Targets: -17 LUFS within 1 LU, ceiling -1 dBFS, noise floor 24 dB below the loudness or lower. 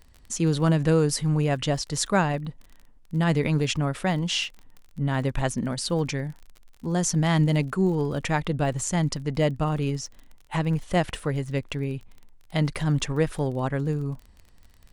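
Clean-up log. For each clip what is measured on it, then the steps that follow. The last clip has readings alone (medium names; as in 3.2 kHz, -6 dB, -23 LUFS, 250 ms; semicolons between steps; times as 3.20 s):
tick rate 34 per s; loudness -25.5 LUFS; peak level -9.0 dBFS; loudness target -17.0 LUFS
-> de-click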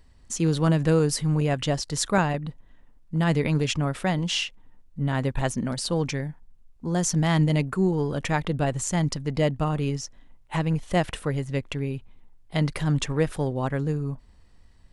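tick rate 0.067 per s; loudness -26.0 LUFS; peak level -9.0 dBFS; loudness target -17.0 LUFS
-> trim +9 dB; peak limiter -1 dBFS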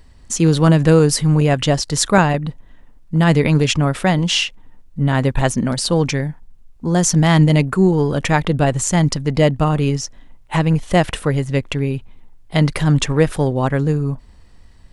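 loudness -17.0 LUFS; peak level -1.0 dBFS; noise floor -45 dBFS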